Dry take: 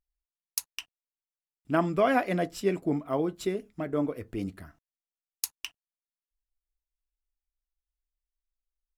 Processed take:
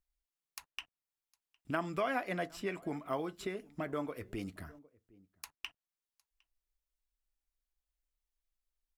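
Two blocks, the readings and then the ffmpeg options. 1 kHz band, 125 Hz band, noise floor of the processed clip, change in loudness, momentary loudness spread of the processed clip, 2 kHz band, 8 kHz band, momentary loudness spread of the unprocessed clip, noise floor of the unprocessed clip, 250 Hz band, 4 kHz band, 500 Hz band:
-8.0 dB, -10.0 dB, under -85 dBFS, -9.0 dB, 18 LU, -5.0 dB, -15.5 dB, 14 LU, under -85 dBFS, -10.5 dB, -7.0 dB, -9.5 dB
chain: -filter_complex "[0:a]asplit=2[s0][s1];[s1]adelay=758,volume=0.0316,highshelf=f=4000:g=-17.1[s2];[s0][s2]amix=inputs=2:normalize=0,acrossover=split=810|2700[s3][s4][s5];[s3]acompressor=threshold=0.0112:ratio=4[s6];[s4]acompressor=threshold=0.0178:ratio=4[s7];[s5]acompressor=threshold=0.00251:ratio=4[s8];[s6][s7][s8]amix=inputs=3:normalize=0"

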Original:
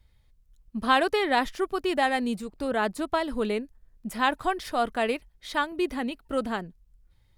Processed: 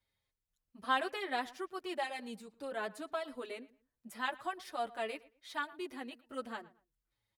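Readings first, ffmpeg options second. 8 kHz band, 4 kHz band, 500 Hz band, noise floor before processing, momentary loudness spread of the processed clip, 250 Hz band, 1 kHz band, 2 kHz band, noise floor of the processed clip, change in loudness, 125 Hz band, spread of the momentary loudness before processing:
-11.0 dB, -11.0 dB, -13.0 dB, -63 dBFS, 13 LU, -16.0 dB, -11.5 dB, -10.5 dB, under -85 dBFS, -12.5 dB, under -20 dB, 10 LU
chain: -filter_complex "[0:a]highpass=f=420:p=1,asplit=2[s0][s1];[s1]adelay=113,lowpass=f=2500:p=1,volume=0.112,asplit=2[s2][s3];[s3]adelay=113,lowpass=f=2500:p=1,volume=0.26[s4];[s0][s2][s4]amix=inputs=3:normalize=0,asplit=2[s5][s6];[s6]adelay=6.9,afreqshift=-0.4[s7];[s5][s7]amix=inputs=2:normalize=1,volume=0.398"

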